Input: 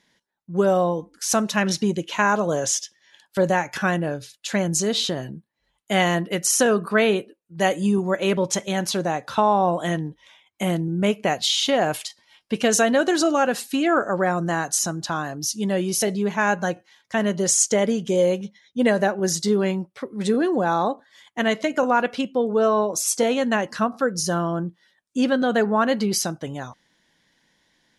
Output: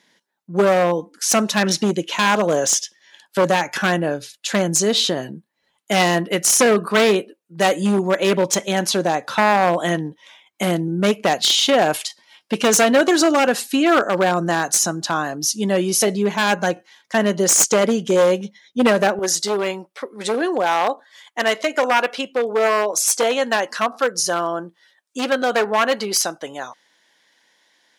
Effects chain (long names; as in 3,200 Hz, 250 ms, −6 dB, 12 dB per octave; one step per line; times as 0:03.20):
wavefolder on the positive side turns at −15 dBFS
high-pass filter 200 Hz 12 dB per octave, from 0:19.19 460 Hz
level +5.5 dB